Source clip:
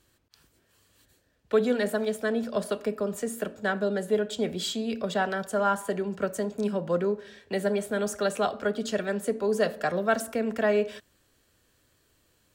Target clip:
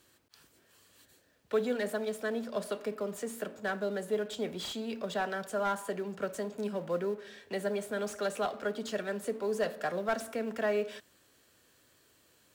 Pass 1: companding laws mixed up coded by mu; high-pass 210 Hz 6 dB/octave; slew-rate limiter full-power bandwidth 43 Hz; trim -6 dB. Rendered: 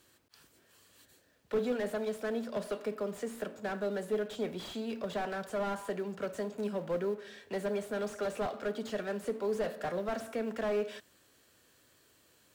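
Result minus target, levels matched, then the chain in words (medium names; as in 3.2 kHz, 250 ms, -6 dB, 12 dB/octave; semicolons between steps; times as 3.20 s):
slew-rate limiter: distortion +11 dB
companding laws mixed up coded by mu; high-pass 210 Hz 6 dB/octave; slew-rate limiter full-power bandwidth 113.5 Hz; trim -6 dB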